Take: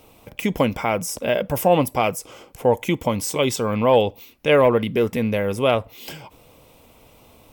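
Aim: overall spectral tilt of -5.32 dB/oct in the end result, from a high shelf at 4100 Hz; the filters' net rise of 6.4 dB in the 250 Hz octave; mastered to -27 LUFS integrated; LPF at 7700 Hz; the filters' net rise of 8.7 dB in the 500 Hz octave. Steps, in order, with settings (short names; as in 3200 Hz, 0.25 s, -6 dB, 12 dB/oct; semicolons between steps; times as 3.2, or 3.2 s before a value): LPF 7700 Hz; bell 250 Hz +5.5 dB; bell 500 Hz +8.5 dB; high shelf 4100 Hz +9 dB; gain -13.5 dB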